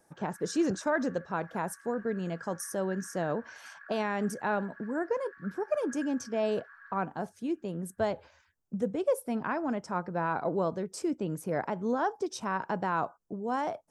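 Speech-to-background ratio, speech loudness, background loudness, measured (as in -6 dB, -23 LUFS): 17.5 dB, -33.0 LUFS, -50.5 LUFS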